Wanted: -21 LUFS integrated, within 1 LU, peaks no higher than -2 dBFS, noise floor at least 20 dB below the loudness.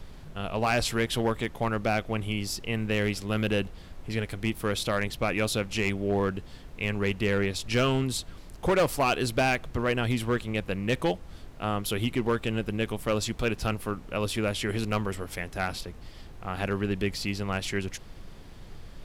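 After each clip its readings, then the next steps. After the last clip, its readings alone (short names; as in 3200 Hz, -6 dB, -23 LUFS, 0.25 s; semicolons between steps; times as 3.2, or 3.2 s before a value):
clipped 0.8%; flat tops at -18.5 dBFS; noise floor -46 dBFS; noise floor target -49 dBFS; loudness -29.0 LUFS; peak -18.5 dBFS; loudness target -21.0 LUFS
-> clip repair -18.5 dBFS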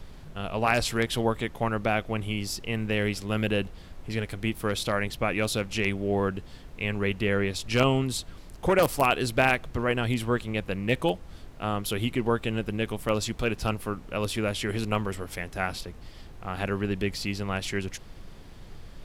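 clipped 0.0%; noise floor -46 dBFS; noise floor target -48 dBFS
-> noise print and reduce 6 dB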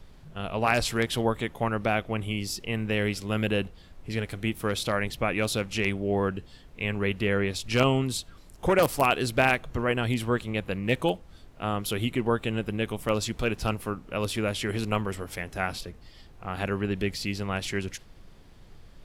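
noise floor -51 dBFS; loudness -28.0 LUFS; peak -9.5 dBFS; loudness target -21.0 LUFS
-> gain +7 dB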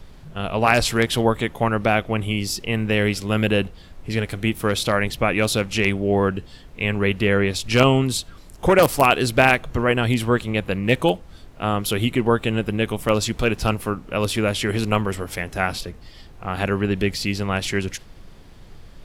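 loudness -21.0 LUFS; peak -2.5 dBFS; noise floor -44 dBFS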